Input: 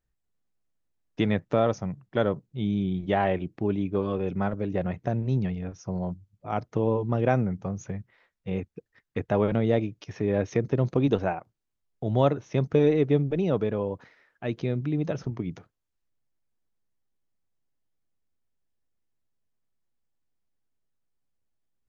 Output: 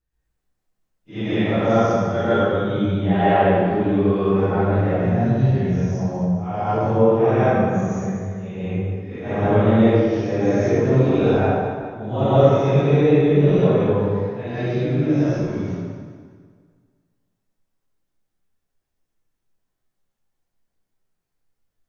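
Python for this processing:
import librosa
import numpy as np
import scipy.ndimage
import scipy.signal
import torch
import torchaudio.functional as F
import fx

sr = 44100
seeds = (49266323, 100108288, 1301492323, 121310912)

y = fx.phase_scramble(x, sr, seeds[0], window_ms=200)
y = fx.echo_wet_highpass(y, sr, ms=200, feedback_pct=41, hz=1400.0, wet_db=-10.5)
y = fx.rev_plate(y, sr, seeds[1], rt60_s=1.8, hf_ratio=0.5, predelay_ms=105, drr_db=-9.0)
y = y * librosa.db_to_amplitude(-1.0)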